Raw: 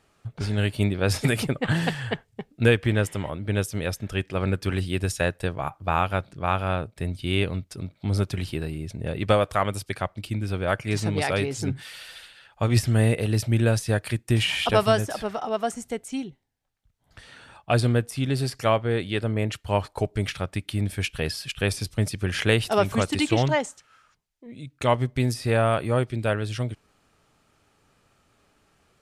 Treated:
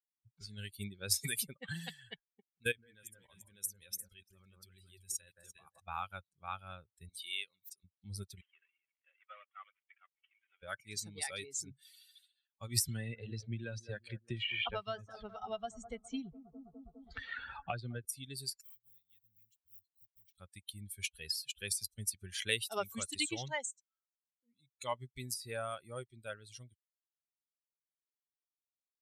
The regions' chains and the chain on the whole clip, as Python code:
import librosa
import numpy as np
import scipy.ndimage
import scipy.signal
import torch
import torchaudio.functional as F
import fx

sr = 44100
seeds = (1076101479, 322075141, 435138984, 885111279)

y = fx.chain(x, sr, fx.high_shelf(hz=2400.0, db=4.0),
    fx.echo_alternate(ms=172, hz=1800.0, feedback_pct=55, wet_db=-3),
    fx.level_steps(step_db=16), at=(2.4, 5.8))
y = fx.chain(y, sr, fx.highpass(hz=970.0, slope=6),
    fx.pre_swell(db_per_s=53.0), at=(7.09, 7.84))
y = fx.chain(y, sr, fx.cvsd(bps=16000),
    fx.highpass(hz=1100.0, slope=12), at=(8.41, 10.63))
y = fx.chain(y, sr, fx.lowpass(hz=3800.0, slope=12),
    fx.echo_bbd(ms=205, stages=2048, feedback_pct=60, wet_db=-12.0),
    fx.band_squash(depth_pct=100), at=(12.88, 18.05))
y = fx.chain(y, sr, fx.block_float(bits=5),
    fx.tone_stack(knobs='6-0-2'),
    fx.band_squash(depth_pct=40), at=(18.61, 20.38))
y = fx.bin_expand(y, sr, power=2.0)
y = librosa.effects.preemphasis(y, coef=0.9, zi=[0.0])
y = y * 10.0 ** (4.0 / 20.0)